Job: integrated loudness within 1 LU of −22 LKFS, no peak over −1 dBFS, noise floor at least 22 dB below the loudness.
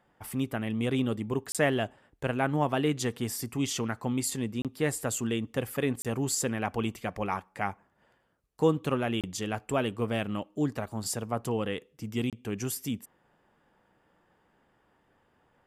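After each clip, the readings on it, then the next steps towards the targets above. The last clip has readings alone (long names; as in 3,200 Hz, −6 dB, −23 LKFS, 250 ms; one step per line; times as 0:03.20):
number of dropouts 5; longest dropout 27 ms; integrated loudness −31.0 LKFS; sample peak −12.5 dBFS; target loudness −22.0 LKFS
→ repair the gap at 0:01.52/0:04.62/0:06.02/0:09.21/0:12.30, 27 ms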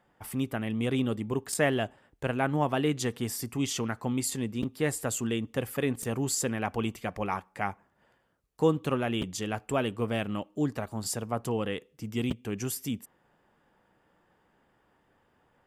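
number of dropouts 0; integrated loudness −31.0 LKFS; sample peak −12.5 dBFS; target loudness −22.0 LKFS
→ level +9 dB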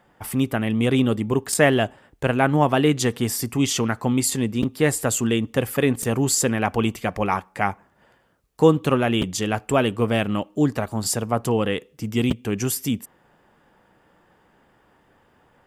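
integrated loudness −22.0 LKFS; sample peak −3.5 dBFS; background noise floor −60 dBFS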